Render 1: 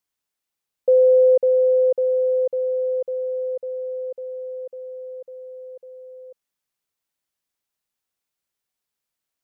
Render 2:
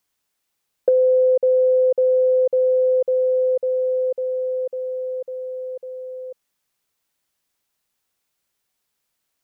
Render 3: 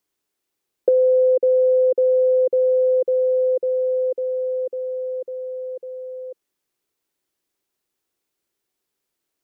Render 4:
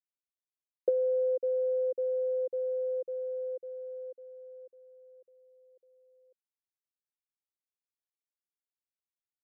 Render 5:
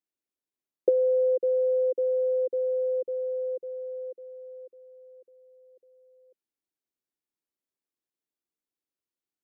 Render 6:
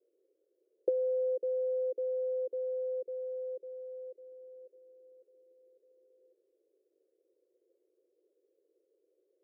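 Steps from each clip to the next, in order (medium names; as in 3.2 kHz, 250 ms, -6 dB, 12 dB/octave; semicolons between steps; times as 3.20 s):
compression 6:1, threshold -23 dBFS, peak gain reduction 10 dB; trim +8 dB
peaking EQ 360 Hz +12 dB 0.77 oct; trim -4.5 dB
upward expansion 2.5:1, over -28 dBFS; trim -8.5 dB
peaking EQ 310 Hz +13.5 dB 1.4 oct; trim -1.5 dB
band noise 340–530 Hz -67 dBFS; trim -8 dB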